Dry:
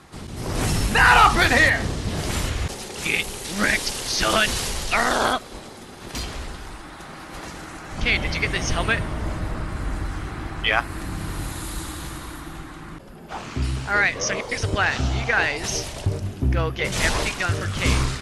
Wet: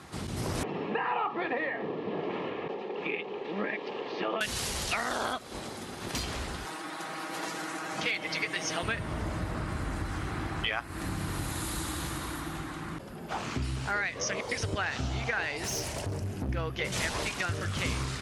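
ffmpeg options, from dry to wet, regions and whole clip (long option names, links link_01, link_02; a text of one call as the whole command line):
ffmpeg -i in.wav -filter_complex "[0:a]asettb=1/sr,asplit=3[link_01][link_02][link_03];[link_01]atrim=end=0.634[link_04];[link_02]atrim=start=0.63:end=4.41,asetpts=PTS-STARTPTS,afade=type=in:duration=0.004:curve=qsin,afade=type=out:start_time=3.776:duration=0.004:curve=qsin,asuperstop=centerf=1500:order=4:qfactor=6.1,highpass=frequency=210:width=0.5412,highpass=frequency=210:width=1.3066,equalizer=frequency=240:width_type=q:width=4:gain=-6,equalizer=frequency=440:width_type=q:width=4:gain=6,equalizer=frequency=630:width_type=q:width=4:gain=-3,equalizer=frequency=1300:width_type=q:width=4:gain=-5,equalizer=frequency=2000:width_type=q:width=4:gain=-9,lowpass=frequency=2300:width=0.5412,lowpass=frequency=2300:width=1.3066[link_05];[link_03]atrim=start=4.406[link_06];[link_04][link_05]acrossfade=duration=0.004:curve1=hsin:curve2=qsin[link_07];[link_07][link_06]acrossfade=duration=0.004:curve1=qsin:curve2=hsin,asettb=1/sr,asplit=3[link_08][link_09][link_10];[link_08]atrim=end=6.654[link_11];[link_09]atrim=start=6.65:end=8.83,asetpts=PTS-STARTPTS,afade=type=in:duration=0.004:curve=qsin,afade=type=out:start_time=2.176:duration=0.004:curve=qsin,aecho=1:1:6.3:0.57,atrim=end_sample=96138,asoftclip=type=hard:threshold=-9.5dB,highpass=270[link_12];[link_10]atrim=start=8.826[link_13];[link_11][link_12]acrossfade=duration=0.004:curve1=hsin:curve2=qsin[link_14];[link_14][link_13]acrossfade=duration=0.004:curve1=qsin:curve2=hsin,asettb=1/sr,asplit=3[link_15][link_16][link_17];[link_15]atrim=end=15.644[link_18];[link_16]atrim=start=15.64:end=16.49,asetpts=PTS-STARTPTS,afade=type=in:duration=0.004:curve=qsin,afade=type=out:start_time=0.846:duration=0.004:curve=qsin,equalizer=frequency=3600:width=2.9:gain=-7,bandreject=frequency=1200:width=14,asoftclip=type=hard:threshold=-27dB[link_19];[link_17]atrim=start=16.486[link_20];[link_18][link_19]acrossfade=duration=0.004:curve1=hsin:curve2=qsin[link_21];[link_21][link_20]acrossfade=duration=0.004:curve1=qsin:curve2=hsin,highpass=63,acompressor=threshold=-30dB:ratio=4" out.wav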